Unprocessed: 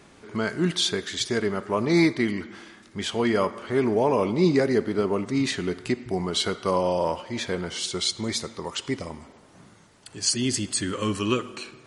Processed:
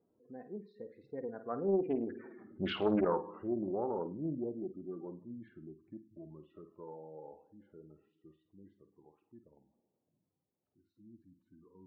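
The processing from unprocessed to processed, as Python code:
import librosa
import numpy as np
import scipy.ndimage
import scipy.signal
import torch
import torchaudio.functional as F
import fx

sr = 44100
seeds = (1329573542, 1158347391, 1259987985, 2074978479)

y = fx.doppler_pass(x, sr, speed_mps=47, closest_m=11.0, pass_at_s=2.49)
y = fx.lowpass(y, sr, hz=1800.0, slope=6)
y = fx.spec_gate(y, sr, threshold_db=-15, keep='strong')
y = fx.env_lowpass(y, sr, base_hz=600.0, full_db=-25.5)
y = fx.highpass(y, sr, hz=210.0, slope=6)
y = fx.room_flutter(y, sr, wall_m=8.8, rt60_s=0.29)
y = fx.doppler_dist(y, sr, depth_ms=0.43)
y = y * librosa.db_to_amplitude(2.0)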